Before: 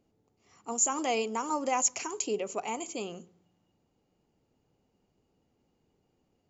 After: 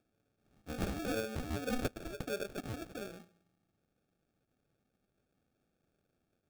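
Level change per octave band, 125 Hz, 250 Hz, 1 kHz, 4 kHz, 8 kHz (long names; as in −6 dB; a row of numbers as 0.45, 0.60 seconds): +11.0 dB, −2.5 dB, −14.5 dB, −7.0 dB, can't be measured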